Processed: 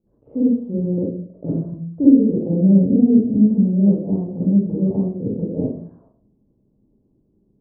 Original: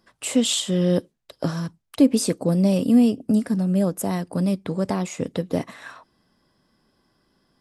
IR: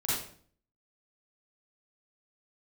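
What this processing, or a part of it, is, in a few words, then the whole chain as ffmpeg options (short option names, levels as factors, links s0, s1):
next room: -filter_complex "[0:a]lowpass=f=490:w=0.5412,lowpass=f=490:w=1.3066[s0];[1:a]atrim=start_sample=2205[s1];[s0][s1]afir=irnorm=-1:irlink=0,volume=0.708"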